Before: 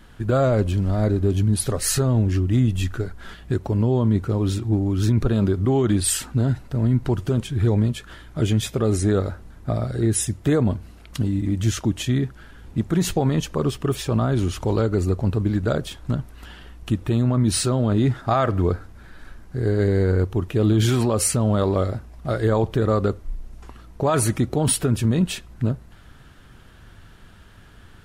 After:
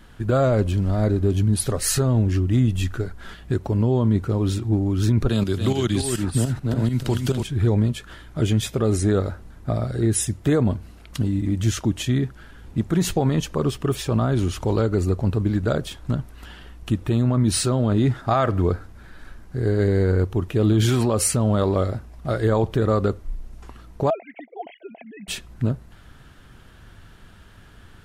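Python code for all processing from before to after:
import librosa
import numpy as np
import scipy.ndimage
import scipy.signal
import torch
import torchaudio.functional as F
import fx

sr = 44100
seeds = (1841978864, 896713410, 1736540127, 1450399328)

y = fx.chain(x, sr, fx.tremolo_shape(shape='saw_up', hz=6.9, depth_pct=70),
    fx.echo_single(ms=285, db=-6.5),
    fx.band_squash(depth_pct=100), at=(5.29, 7.43))
y = fx.chain(y, sr, fx.sine_speech(),
    fx.double_bandpass(hz=1200.0, octaves=1.6), at=(24.1, 25.28))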